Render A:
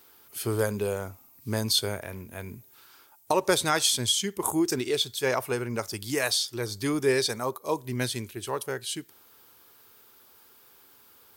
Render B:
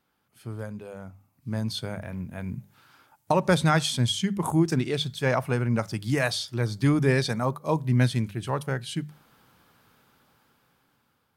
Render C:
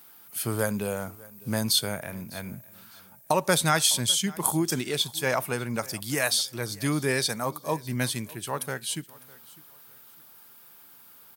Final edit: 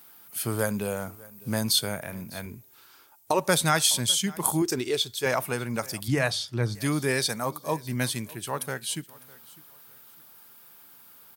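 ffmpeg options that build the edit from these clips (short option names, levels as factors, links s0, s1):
-filter_complex "[0:a]asplit=2[s0][s1];[2:a]asplit=4[s2][s3][s4][s5];[s2]atrim=end=2.462[s6];[s0]atrim=start=2.458:end=3.392[s7];[s3]atrim=start=3.388:end=4.622[s8];[s1]atrim=start=4.618:end=5.262[s9];[s4]atrim=start=5.258:end=6.082[s10];[1:a]atrim=start=6.078:end=6.752[s11];[s5]atrim=start=6.748[s12];[s6][s7]acrossfade=d=0.004:c1=hsin:c2=hsin[s13];[s13][s8]acrossfade=d=0.004:c1=hsin:c2=hsin[s14];[s14][s9]acrossfade=d=0.004:c1=hsin:c2=hsin[s15];[s15][s10]acrossfade=d=0.004:c1=hsin:c2=hsin[s16];[s16][s11]acrossfade=d=0.004:c1=hsin:c2=hsin[s17];[s17][s12]acrossfade=d=0.004:c1=hsin:c2=hsin"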